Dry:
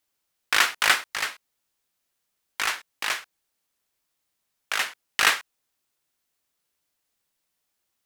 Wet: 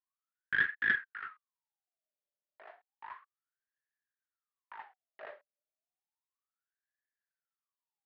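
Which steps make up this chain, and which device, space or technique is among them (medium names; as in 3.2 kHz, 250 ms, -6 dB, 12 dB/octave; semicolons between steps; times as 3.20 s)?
wah-wah guitar rig (wah-wah 0.32 Hz 580–1700 Hz, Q 18; valve stage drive 23 dB, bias 0.55; cabinet simulation 110–3900 Hz, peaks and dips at 250 Hz +5 dB, 390 Hz +10 dB, 1.8 kHz +8 dB)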